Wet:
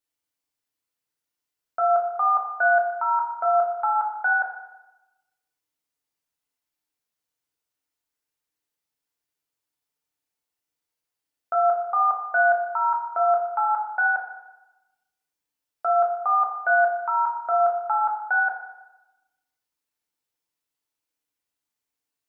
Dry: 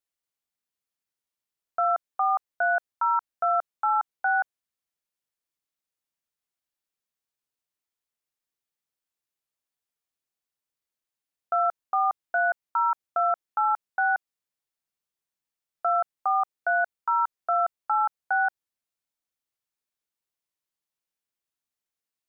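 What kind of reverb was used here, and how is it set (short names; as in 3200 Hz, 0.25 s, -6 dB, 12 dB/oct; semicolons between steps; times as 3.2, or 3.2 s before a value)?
FDN reverb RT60 1 s, low-frequency decay 0.8×, high-frequency decay 0.75×, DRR -1.5 dB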